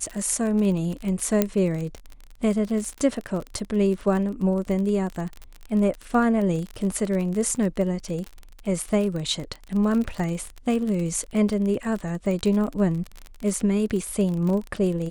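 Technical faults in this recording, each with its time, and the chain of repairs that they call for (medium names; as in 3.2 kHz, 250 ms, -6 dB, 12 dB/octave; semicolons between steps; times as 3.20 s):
crackle 37 per s -28 dBFS
1.42 s: pop -6 dBFS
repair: de-click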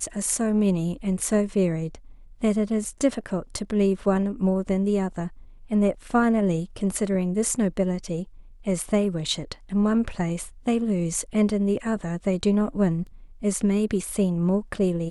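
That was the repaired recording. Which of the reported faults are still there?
nothing left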